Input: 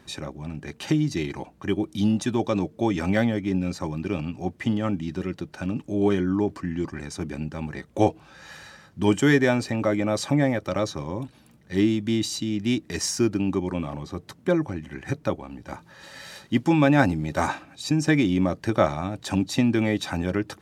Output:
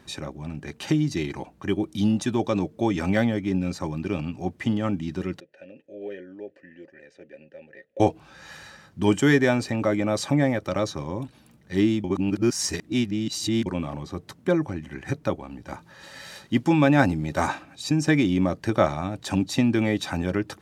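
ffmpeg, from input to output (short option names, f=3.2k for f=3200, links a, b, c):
-filter_complex "[0:a]asettb=1/sr,asplit=3[a][b][c];[a]atrim=end=5.404[d];[b]atrim=start=5.4:end=8,asetpts=PTS-STARTPTS,afade=t=in:d=0.004:c=qsin,afade=t=out:st=2.596:d=0.004:c=qsin,asplit=3[e][f][g];[e]bandpass=f=530:t=q:w=8,volume=0dB[h];[f]bandpass=f=1.84k:t=q:w=8,volume=-6dB[i];[g]bandpass=f=2.48k:t=q:w=8,volume=-9dB[j];[h][i][j]amix=inputs=3:normalize=0[k];[c]atrim=start=7.996[l];[d][k]acrossfade=d=0.004:c1=hsin:c2=qsin[m];[m][l]acrossfade=d=0.004:c1=qsin:c2=hsin,asplit=3[n][o][p];[n]atrim=end=12.042[q];[o]atrim=start=12.038:end=13.662,asetpts=PTS-STARTPTS,areverse[r];[p]atrim=start=13.658[s];[q][r]acrossfade=d=0.004:c1=hsin:c2=hsin[t];[t][s]acrossfade=d=0.004:c1=hsin:c2=hsin"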